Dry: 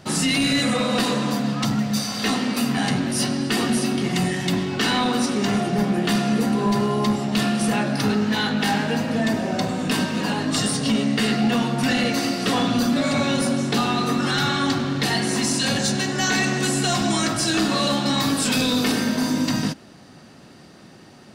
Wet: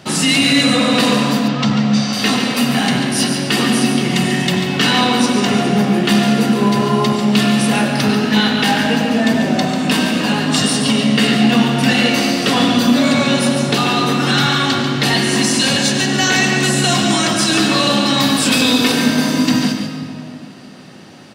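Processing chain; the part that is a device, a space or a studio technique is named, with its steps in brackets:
PA in a hall (high-pass filter 110 Hz; parametric band 2,900 Hz +4 dB 0.89 octaves; single-tap delay 142 ms −8.5 dB; convolution reverb RT60 2.6 s, pre-delay 81 ms, DRR 7 dB)
0:01.48–0:02.13: Bessel low-pass filter 5,100 Hz, order 6
level +5 dB

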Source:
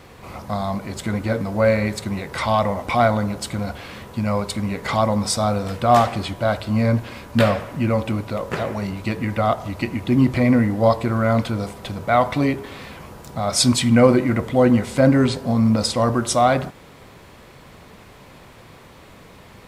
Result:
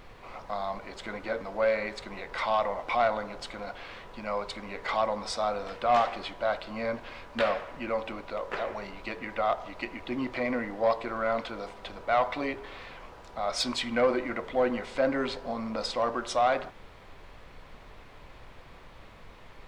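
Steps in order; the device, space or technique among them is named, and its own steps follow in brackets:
aircraft cabin announcement (band-pass filter 460–4,100 Hz; soft clipping −10 dBFS, distortion −18 dB; brown noise bed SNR 18 dB)
level −5.5 dB

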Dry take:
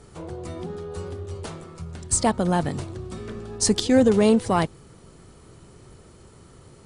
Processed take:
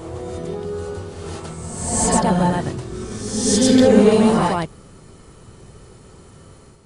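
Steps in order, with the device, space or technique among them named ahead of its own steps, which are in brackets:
reverse reverb (reversed playback; convolution reverb RT60 1.2 s, pre-delay 85 ms, DRR −5.5 dB; reversed playback)
level −1.5 dB

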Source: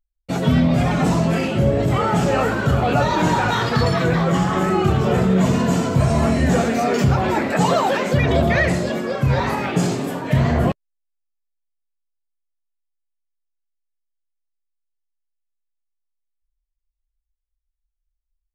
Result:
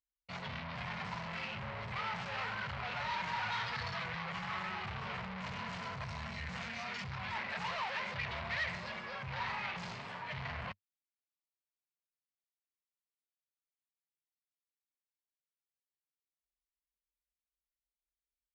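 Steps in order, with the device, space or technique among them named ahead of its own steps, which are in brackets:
0:06.04–0:07.35: drawn EQ curve 200 Hz 0 dB, 360 Hz −10 dB, 3,700 Hz +1 dB
scooped metal amplifier (tube saturation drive 25 dB, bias 0.4; loudspeaker in its box 84–4,300 Hz, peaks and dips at 98 Hz +3 dB, 210 Hz +7 dB, 980 Hz +6 dB, 2,100 Hz +4 dB, 3,500 Hz −4 dB; guitar amp tone stack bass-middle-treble 10-0-10)
level −3 dB

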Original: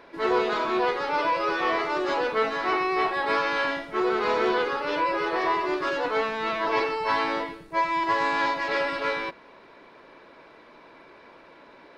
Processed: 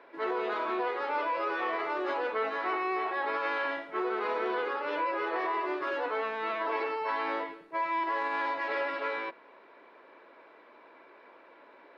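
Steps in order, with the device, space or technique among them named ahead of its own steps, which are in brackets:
DJ mixer with the lows and highs turned down (three-way crossover with the lows and the highs turned down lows −23 dB, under 260 Hz, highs −15 dB, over 3,200 Hz; brickwall limiter −19 dBFS, peak gain reduction 6 dB)
level −4 dB

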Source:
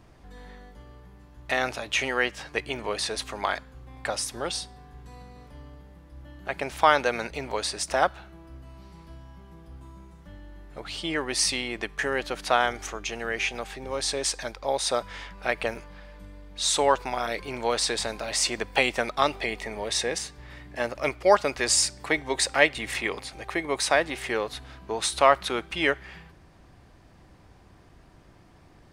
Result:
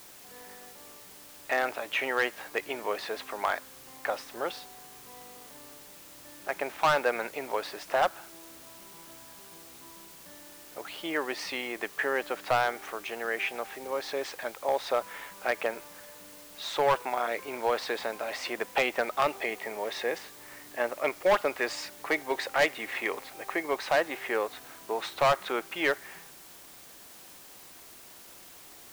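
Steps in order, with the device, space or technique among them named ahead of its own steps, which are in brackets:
aircraft radio (band-pass filter 340–2,300 Hz; hard clipping −18 dBFS, distortion −9 dB; white noise bed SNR 18 dB)

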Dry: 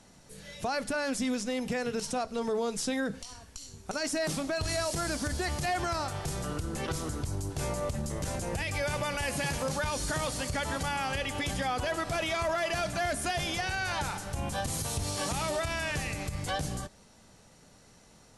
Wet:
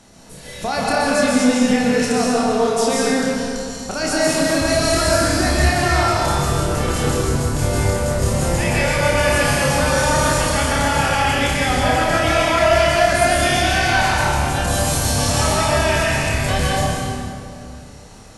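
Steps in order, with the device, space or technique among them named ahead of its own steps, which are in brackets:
tunnel (flutter between parallel walls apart 4.9 metres, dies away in 0.35 s; convolution reverb RT60 2.4 s, pre-delay 117 ms, DRR −4.5 dB)
level +7.5 dB

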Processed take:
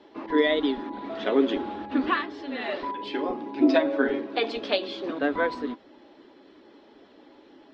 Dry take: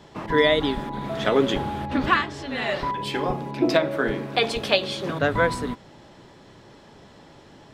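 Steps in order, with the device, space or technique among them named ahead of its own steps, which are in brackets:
clip after many re-uploads (low-pass filter 4,800 Hz 24 dB per octave; spectral magnitudes quantised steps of 15 dB)
0:03.56–0:04.21: comb filter 7.4 ms, depth 79%
low shelf with overshoot 200 Hz −12 dB, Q 3
level −5.5 dB

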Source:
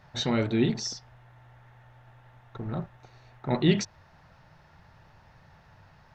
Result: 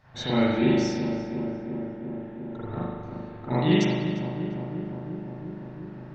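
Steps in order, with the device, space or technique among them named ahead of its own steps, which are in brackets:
dub delay into a spring reverb (feedback echo with a low-pass in the loop 350 ms, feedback 79%, low-pass 1,600 Hz, level −7.5 dB; spring reverb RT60 1.2 s, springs 39 ms, chirp 60 ms, DRR −9 dB)
0:00.59–0:02.66: notch filter 1,200 Hz, Q 8.4
level −5.5 dB

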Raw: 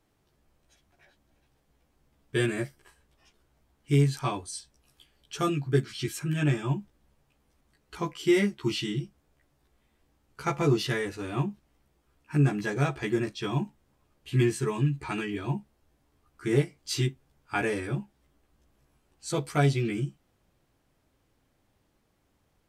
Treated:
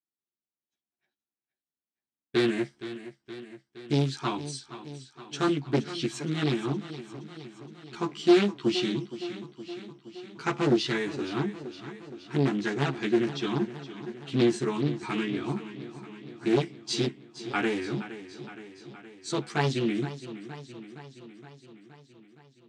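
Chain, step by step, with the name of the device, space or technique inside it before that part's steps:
full-range speaker at full volume (highs frequency-modulated by the lows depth 0.91 ms; loudspeaker in its box 170–7,800 Hz, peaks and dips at 230 Hz +6 dB, 350 Hz +5 dB, 550 Hz −8 dB, 3,800 Hz +5 dB)
downward expander −47 dBFS
feedback echo with a swinging delay time 468 ms, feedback 65%, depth 64 cents, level −13.5 dB

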